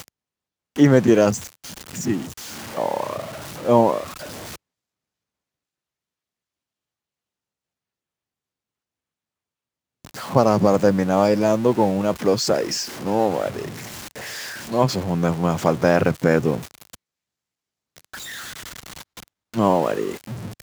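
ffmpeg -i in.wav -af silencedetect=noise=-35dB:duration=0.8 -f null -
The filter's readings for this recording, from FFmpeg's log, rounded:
silence_start: 4.56
silence_end: 10.05 | silence_duration: 5.49
silence_start: 16.95
silence_end: 17.96 | silence_duration: 1.01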